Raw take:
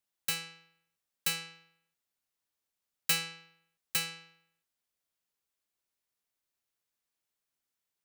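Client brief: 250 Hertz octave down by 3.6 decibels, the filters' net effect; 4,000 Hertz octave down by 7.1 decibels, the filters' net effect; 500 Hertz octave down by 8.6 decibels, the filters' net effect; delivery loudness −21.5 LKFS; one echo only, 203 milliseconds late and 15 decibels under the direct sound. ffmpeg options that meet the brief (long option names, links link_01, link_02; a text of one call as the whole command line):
ffmpeg -i in.wav -af "equalizer=frequency=250:width_type=o:gain=-6.5,equalizer=frequency=500:width_type=o:gain=-7.5,equalizer=frequency=4000:width_type=o:gain=-9,aecho=1:1:203:0.178,volume=14.5dB" out.wav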